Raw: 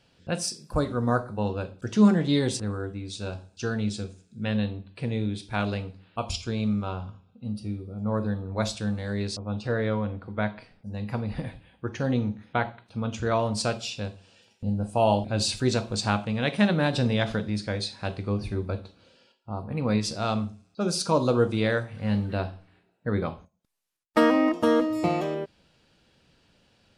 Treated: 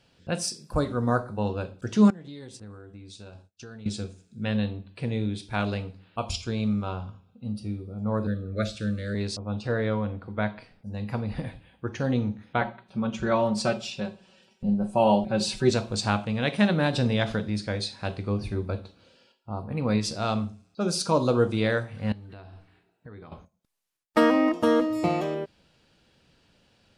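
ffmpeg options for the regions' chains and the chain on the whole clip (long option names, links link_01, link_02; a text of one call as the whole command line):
ffmpeg -i in.wav -filter_complex "[0:a]asettb=1/sr,asplit=3[link_01][link_02][link_03];[link_01]atrim=end=2.104[link_04];[link_02]atrim=start=2.1:end=3.86,asetpts=PTS-STARTPTS,afade=type=in:duration=0.004:curve=qsin,afade=type=out:start_time=1.756:duration=0.004:curve=qsin,acompressor=threshold=-38dB:ratio=8:attack=3.2:release=140:knee=1:detection=peak,agate=range=-33dB:threshold=-40dB:ratio=3:release=100:detection=peak[link_05];[link_03]atrim=start=3.856[link_06];[link_04][link_05]acrossfade=duration=0.004:curve1=hsin:curve2=qsin[link_07];[link_07][link_06]acrossfade=duration=0.004:curve1=qsin:curve2=hsin,asettb=1/sr,asplit=3[link_08][link_09][link_10];[link_08]atrim=end=8.274[link_11];[link_09]atrim=start=8.27:end=9.15,asetpts=PTS-STARTPTS,afade=type=in:duration=0.004:curve=qsin,afade=type=out:start_time=0.876:duration=0.004:curve=qsin,acrossover=split=3600[link_12][link_13];[link_13]acompressor=threshold=-44dB:ratio=4:attack=1:release=60[link_14];[link_12][link_14]amix=inputs=2:normalize=0,asuperstop=centerf=880:order=20:qfactor=1.7[link_15];[link_10]atrim=start=9.146[link_16];[link_11][link_15]acrossfade=duration=0.004:curve1=hsin:curve2=qsin[link_17];[link_17][link_16]acrossfade=duration=0.004:curve1=qsin:curve2=hsin,asettb=1/sr,asplit=3[link_18][link_19][link_20];[link_18]atrim=end=12.614[link_21];[link_19]atrim=start=12.61:end=15.7,asetpts=PTS-STARTPTS,afade=type=in:duration=0.004:curve=qsin,afade=type=out:start_time=3.086:duration=0.004:curve=qsin,highshelf=frequency=3100:gain=-7.5,aecho=1:1:5.3:0.92,atrim=end_sample=136269[link_22];[link_20]atrim=start=15.696[link_23];[link_21][link_22]acrossfade=duration=0.004:curve1=hsin:curve2=qsin[link_24];[link_24][link_23]acrossfade=duration=0.004:curve1=qsin:curve2=hsin,asettb=1/sr,asplit=3[link_25][link_26][link_27];[link_25]atrim=end=22.124[link_28];[link_26]atrim=start=22.12:end=23.32,asetpts=PTS-STARTPTS,afade=type=in:duration=0.004:curve=qsin,afade=type=out:start_time=1.196:duration=0.004:curve=qsin,equalizer=frequency=200:width_type=o:width=0.26:gain=-6,acompressor=threshold=-41dB:ratio=8:attack=3.2:release=140:knee=1:detection=peak,bandreject=frequency=550:width=6.8[link_29];[link_27]atrim=start=23.316[link_30];[link_28][link_29]acrossfade=duration=0.004:curve1=hsin:curve2=qsin[link_31];[link_31][link_30]acrossfade=duration=0.004:curve1=qsin:curve2=hsin" out.wav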